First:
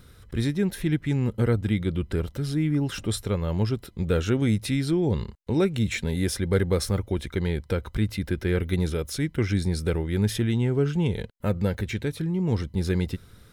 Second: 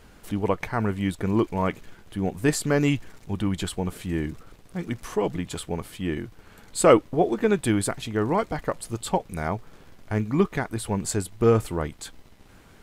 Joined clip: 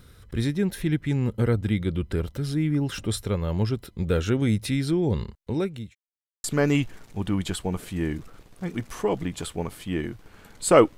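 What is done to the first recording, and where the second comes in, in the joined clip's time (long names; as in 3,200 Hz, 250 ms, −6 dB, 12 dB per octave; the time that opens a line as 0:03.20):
first
0:05.15–0:05.95: fade out equal-power
0:05.95–0:06.44: silence
0:06.44: continue with second from 0:02.57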